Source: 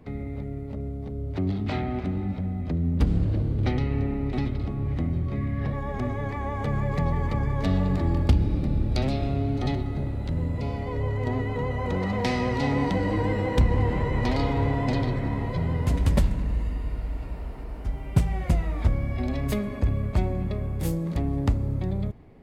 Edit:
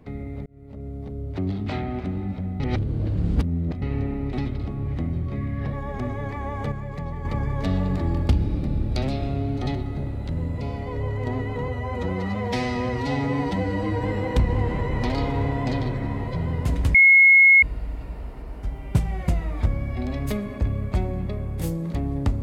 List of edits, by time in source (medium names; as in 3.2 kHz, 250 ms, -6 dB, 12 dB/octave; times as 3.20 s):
0.46–0.98 s: fade in
2.60–3.82 s: reverse
6.72–7.25 s: gain -6.5 dB
11.68–13.25 s: stretch 1.5×
16.16–16.84 s: bleep 2.17 kHz -9.5 dBFS